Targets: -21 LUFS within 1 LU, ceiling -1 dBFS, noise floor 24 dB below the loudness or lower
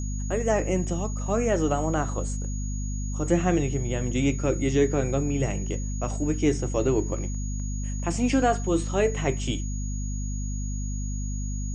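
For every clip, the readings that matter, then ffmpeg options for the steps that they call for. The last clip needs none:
hum 50 Hz; harmonics up to 250 Hz; hum level -27 dBFS; steady tone 6700 Hz; tone level -40 dBFS; loudness -27.0 LUFS; peak -8.5 dBFS; loudness target -21.0 LUFS
-> -af "bandreject=f=50:t=h:w=4,bandreject=f=100:t=h:w=4,bandreject=f=150:t=h:w=4,bandreject=f=200:t=h:w=4,bandreject=f=250:t=h:w=4"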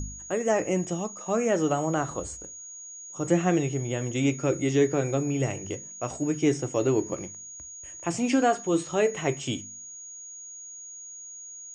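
hum none; steady tone 6700 Hz; tone level -40 dBFS
-> -af "bandreject=f=6.7k:w=30"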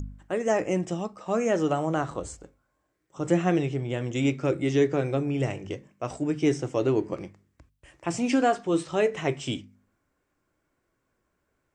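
steady tone none; loudness -27.0 LUFS; peak -9.5 dBFS; loudness target -21.0 LUFS
-> -af "volume=6dB"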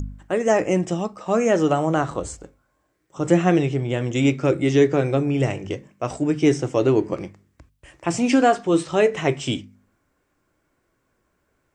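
loudness -21.0 LUFS; peak -3.5 dBFS; noise floor -70 dBFS

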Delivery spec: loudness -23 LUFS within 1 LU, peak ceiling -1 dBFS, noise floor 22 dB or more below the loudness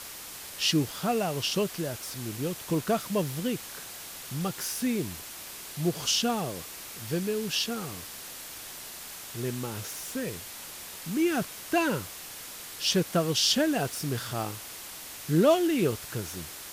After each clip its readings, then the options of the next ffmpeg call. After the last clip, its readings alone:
noise floor -43 dBFS; noise floor target -52 dBFS; loudness -30.0 LUFS; peak -10.5 dBFS; loudness target -23.0 LUFS
-> -af "afftdn=nr=9:nf=-43"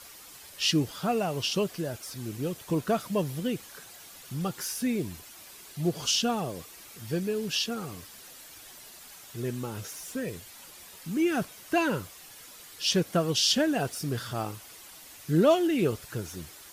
noise floor -49 dBFS; noise floor target -51 dBFS
-> -af "afftdn=nr=6:nf=-49"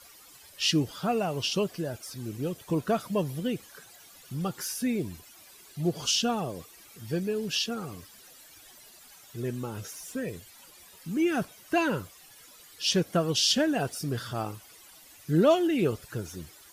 noise floor -53 dBFS; loudness -29.0 LUFS; peak -11.0 dBFS; loudness target -23.0 LUFS
-> -af "volume=6dB"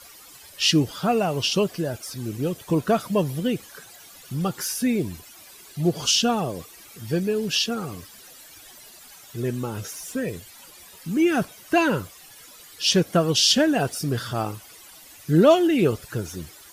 loudness -23.0 LUFS; peak -5.0 dBFS; noise floor -47 dBFS

